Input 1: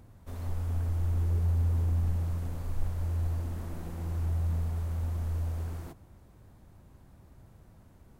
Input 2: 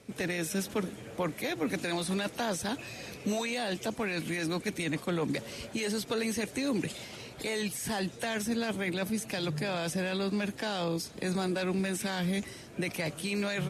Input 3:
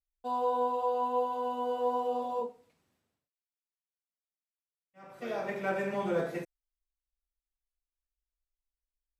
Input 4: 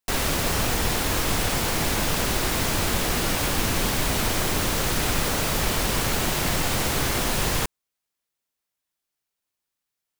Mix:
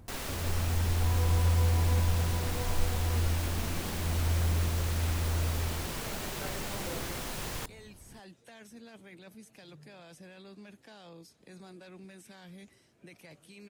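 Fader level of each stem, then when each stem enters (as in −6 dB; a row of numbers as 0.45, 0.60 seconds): +1.0, −19.0, −12.5, −13.5 decibels; 0.00, 0.25, 0.75, 0.00 seconds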